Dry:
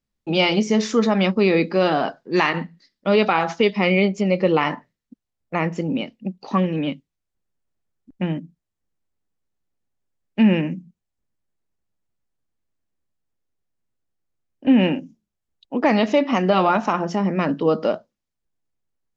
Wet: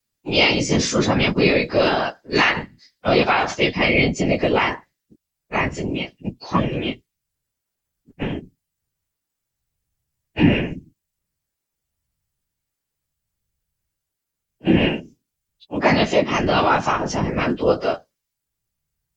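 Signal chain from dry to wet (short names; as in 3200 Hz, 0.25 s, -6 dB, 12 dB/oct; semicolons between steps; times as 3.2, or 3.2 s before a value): frequency quantiser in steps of 2 st; whisperiser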